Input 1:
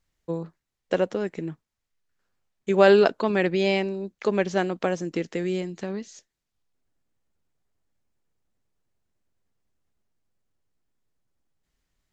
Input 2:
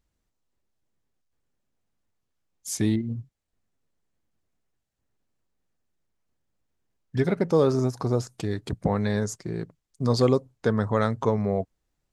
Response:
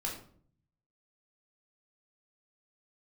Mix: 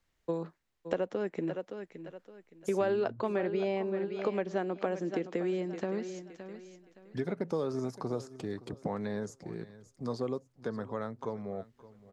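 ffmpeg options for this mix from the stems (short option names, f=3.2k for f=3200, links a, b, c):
-filter_complex "[0:a]bass=f=250:g=-4,treble=f=4k:g=-5,volume=2dB,asplit=2[a][b];[b]volume=-15dB[c];[1:a]highshelf=f=7.9k:g=-5,dynaudnorm=f=440:g=13:m=11.5dB,volume=-12.5dB,asplit=2[d][e];[e]volume=-20dB[f];[c][f]amix=inputs=2:normalize=0,aecho=0:1:567|1134|1701|2268:1|0.28|0.0784|0.022[g];[a][d][g]amix=inputs=3:normalize=0,acrossover=split=160|1400[h][i][j];[h]acompressor=threshold=-53dB:ratio=4[k];[i]acompressor=threshold=-30dB:ratio=4[l];[j]acompressor=threshold=-51dB:ratio=4[m];[k][l][m]amix=inputs=3:normalize=0"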